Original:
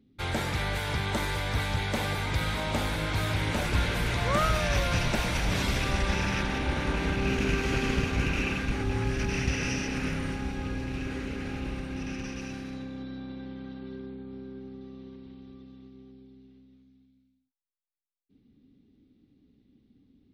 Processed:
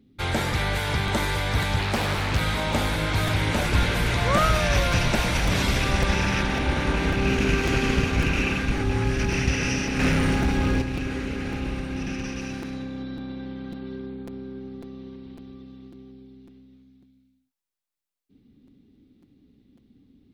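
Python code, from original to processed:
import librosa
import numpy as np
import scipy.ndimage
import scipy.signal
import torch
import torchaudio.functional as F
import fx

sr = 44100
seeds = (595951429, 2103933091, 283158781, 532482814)

y = fx.leveller(x, sr, passes=2, at=(9.99, 10.82))
y = fx.buffer_crackle(y, sr, first_s=0.52, period_s=0.55, block=256, kind='repeat')
y = fx.doppler_dist(y, sr, depth_ms=0.98, at=(1.79, 2.39))
y = y * 10.0 ** (5.0 / 20.0)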